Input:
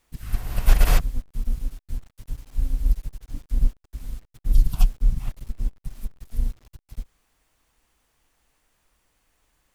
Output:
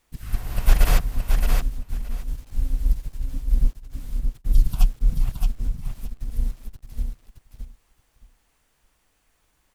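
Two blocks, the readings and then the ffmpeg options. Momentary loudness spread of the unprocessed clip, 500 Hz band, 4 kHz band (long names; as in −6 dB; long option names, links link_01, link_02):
19 LU, +1.5 dB, +1.0 dB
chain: -af "aecho=1:1:620|1240|1860:0.562|0.0956|0.0163"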